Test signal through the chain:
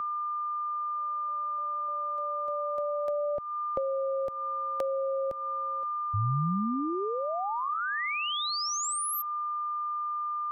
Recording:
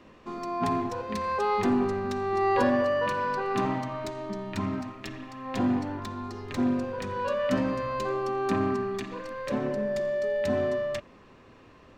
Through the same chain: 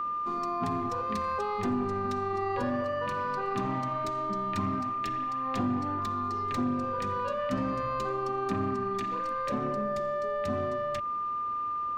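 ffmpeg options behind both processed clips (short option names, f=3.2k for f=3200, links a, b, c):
-filter_complex "[0:a]aeval=exprs='val(0)+0.0355*sin(2*PI*1200*n/s)':c=same,acrossover=split=180[a][b];[b]acompressor=threshold=-28dB:ratio=10[c];[a][c]amix=inputs=2:normalize=0"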